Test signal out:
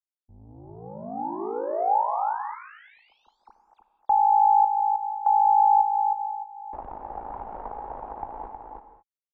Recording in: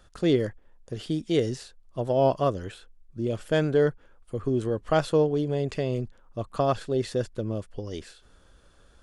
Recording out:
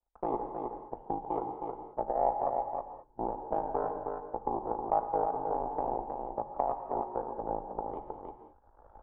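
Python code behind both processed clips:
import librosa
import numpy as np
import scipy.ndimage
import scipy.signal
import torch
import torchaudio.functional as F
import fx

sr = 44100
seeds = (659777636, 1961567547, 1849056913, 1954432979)

p1 = fx.recorder_agc(x, sr, target_db=-14.5, rise_db_per_s=8.7, max_gain_db=30)
p2 = fx.low_shelf(p1, sr, hz=260.0, db=4.5)
p3 = fx.power_curve(p2, sr, exponent=2.0)
p4 = fx.peak_eq(p3, sr, hz=130.0, db=-15.0, octaves=2.2)
p5 = p4 * np.sin(2.0 * np.pi * 27.0 * np.arange(len(p4)) / sr)
p6 = fx.ladder_lowpass(p5, sr, hz=890.0, resonance_pct=80)
p7 = p6 + fx.echo_single(p6, sr, ms=315, db=-6.5, dry=0)
p8 = fx.rev_gated(p7, sr, seeds[0], gate_ms=240, shape='flat', drr_db=8.0)
p9 = fx.band_squash(p8, sr, depth_pct=40)
y = p9 * 10.0 ** (8.0 / 20.0)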